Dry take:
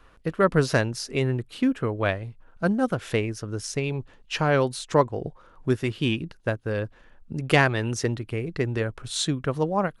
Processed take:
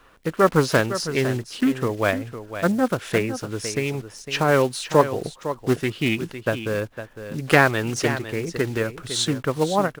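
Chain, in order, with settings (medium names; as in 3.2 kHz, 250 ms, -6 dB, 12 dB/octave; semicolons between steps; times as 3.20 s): block-companded coder 5-bit; bass shelf 120 Hz -10 dB; on a send: delay 506 ms -11 dB; on the sum: loudspeaker Doppler distortion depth 0.19 ms; trim +4 dB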